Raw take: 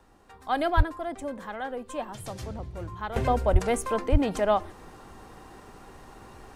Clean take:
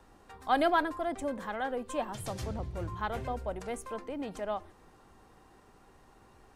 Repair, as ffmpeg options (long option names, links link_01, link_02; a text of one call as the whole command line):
ffmpeg -i in.wav -filter_complex "[0:a]asplit=3[link_01][link_02][link_03];[link_01]afade=type=out:start_time=0.76:duration=0.02[link_04];[link_02]highpass=frequency=140:width=0.5412,highpass=frequency=140:width=1.3066,afade=type=in:start_time=0.76:duration=0.02,afade=type=out:start_time=0.88:duration=0.02[link_05];[link_03]afade=type=in:start_time=0.88:duration=0.02[link_06];[link_04][link_05][link_06]amix=inputs=3:normalize=0,asplit=3[link_07][link_08][link_09];[link_07]afade=type=out:start_time=3.52:duration=0.02[link_10];[link_08]highpass=frequency=140:width=0.5412,highpass=frequency=140:width=1.3066,afade=type=in:start_time=3.52:duration=0.02,afade=type=out:start_time=3.64:duration=0.02[link_11];[link_09]afade=type=in:start_time=3.64:duration=0.02[link_12];[link_10][link_11][link_12]amix=inputs=3:normalize=0,asplit=3[link_13][link_14][link_15];[link_13]afade=type=out:start_time=4.11:duration=0.02[link_16];[link_14]highpass=frequency=140:width=0.5412,highpass=frequency=140:width=1.3066,afade=type=in:start_time=4.11:duration=0.02,afade=type=out:start_time=4.23:duration=0.02[link_17];[link_15]afade=type=in:start_time=4.23:duration=0.02[link_18];[link_16][link_17][link_18]amix=inputs=3:normalize=0,asetnsamples=nb_out_samples=441:pad=0,asendcmd='3.16 volume volume -11.5dB',volume=0dB" out.wav